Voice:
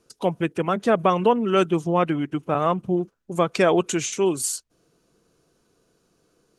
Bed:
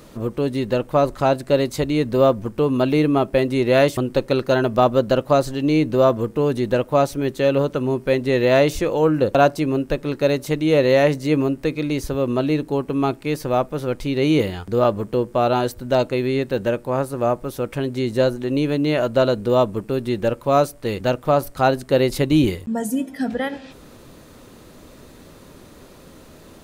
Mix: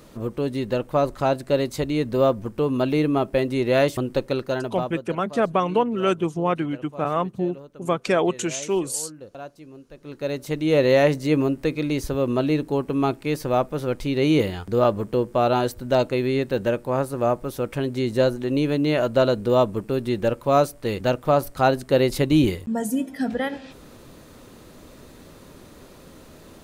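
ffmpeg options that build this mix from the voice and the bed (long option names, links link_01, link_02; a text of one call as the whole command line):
ffmpeg -i stem1.wav -i stem2.wav -filter_complex "[0:a]adelay=4500,volume=-2dB[link_01];[1:a]volume=18dB,afade=type=out:start_time=4.16:duration=0.9:silence=0.105925,afade=type=in:start_time=9.93:duration=0.91:silence=0.0841395[link_02];[link_01][link_02]amix=inputs=2:normalize=0" out.wav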